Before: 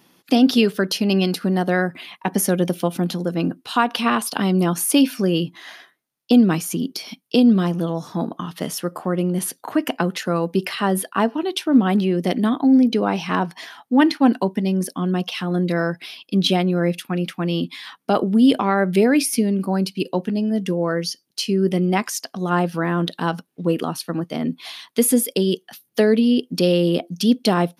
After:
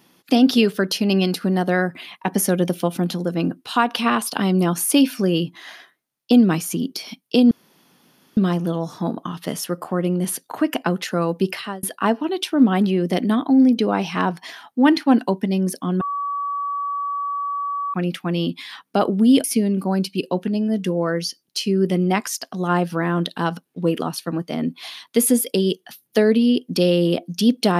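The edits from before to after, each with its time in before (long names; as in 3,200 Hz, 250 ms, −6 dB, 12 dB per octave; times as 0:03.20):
0:07.51: splice in room tone 0.86 s
0:10.64–0:10.97: fade out
0:15.15–0:17.08: beep over 1,140 Hz −22 dBFS
0:18.58–0:19.26: remove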